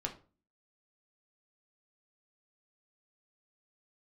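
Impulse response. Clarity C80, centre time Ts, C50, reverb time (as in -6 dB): 18.0 dB, 12 ms, 12.5 dB, 0.35 s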